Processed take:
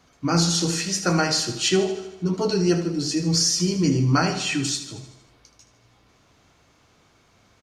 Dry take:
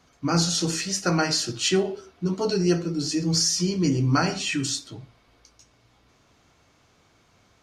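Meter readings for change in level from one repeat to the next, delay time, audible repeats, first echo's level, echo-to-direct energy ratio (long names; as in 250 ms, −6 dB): −4.5 dB, 77 ms, 6, −12.0 dB, −10.0 dB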